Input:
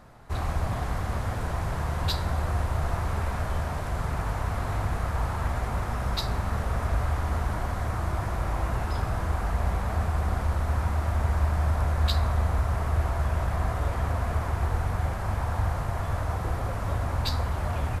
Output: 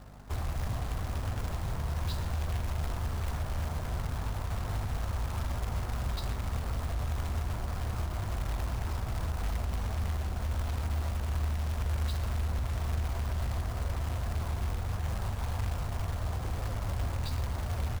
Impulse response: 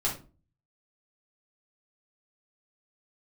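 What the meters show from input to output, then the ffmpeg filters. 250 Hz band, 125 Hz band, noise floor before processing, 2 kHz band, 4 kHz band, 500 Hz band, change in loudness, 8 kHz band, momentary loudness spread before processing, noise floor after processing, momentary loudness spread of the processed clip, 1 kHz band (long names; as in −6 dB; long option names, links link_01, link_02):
−6.0 dB, −5.0 dB, −32 dBFS, −8.0 dB, −6.5 dB, −8.5 dB, −5.5 dB, −2.0 dB, 4 LU, −37 dBFS, 2 LU, −9.5 dB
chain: -filter_complex "[0:a]highshelf=frequency=2700:gain=-11.5,acrossover=split=130|3000[link_01][link_02][link_03];[link_02]acompressor=threshold=-40dB:ratio=2.5[link_04];[link_01][link_04][link_03]amix=inputs=3:normalize=0,alimiter=limit=-23.5dB:level=0:latency=1:release=31,aeval=exprs='val(0)+0.00447*(sin(2*PI*50*n/s)+sin(2*PI*2*50*n/s)/2+sin(2*PI*3*50*n/s)/3+sin(2*PI*4*50*n/s)/4+sin(2*PI*5*50*n/s)/5)':channel_layout=same,acrusher=bits=3:mode=log:mix=0:aa=0.000001,asplit=2[link_05][link_06];[link_06]asplit=3[link_07][link_08][link_09];[link_07]adelay=126,afreqshift=-150,volume=-15.5dB[link_10];[link_08]adelay=252,afreqshift=-300,volume=-24.9dB[link_11];[link_09]adelay=378,afreqshift=-450,volume=-34.2dB[link_12];[link_10][link_11][link_12]amix=inputs=3:normalize=0[link_13];[link_05][link_13]amix=inputs=2:normalize=0,volume=-2dB"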